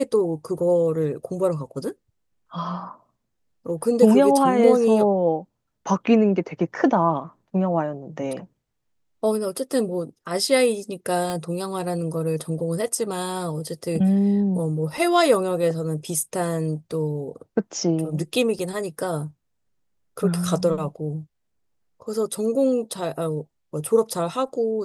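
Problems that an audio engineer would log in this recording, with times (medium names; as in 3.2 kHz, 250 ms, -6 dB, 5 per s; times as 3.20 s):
11.30 s: pop -14 dBFS
18.59 s: dropout 3.3 ms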